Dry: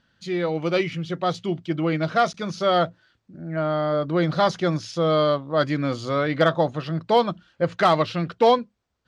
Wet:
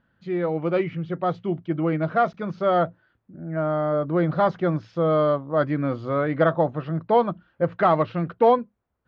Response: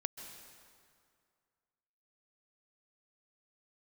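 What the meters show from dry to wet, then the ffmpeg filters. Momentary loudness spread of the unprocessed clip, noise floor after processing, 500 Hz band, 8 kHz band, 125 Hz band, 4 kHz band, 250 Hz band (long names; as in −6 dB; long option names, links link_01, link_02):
8 LU, −72 dBFS, 0.0 dB, can't be measured, 0.0 dB, −13.5 dB, 0.0 dB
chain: -af "lowpass=1600"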